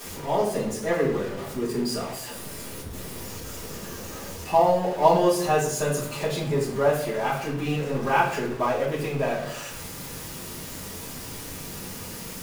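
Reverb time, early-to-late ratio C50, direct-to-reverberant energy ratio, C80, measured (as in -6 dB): 0.65 s, 5.0 dB, -8.0 dB, 9.5 dB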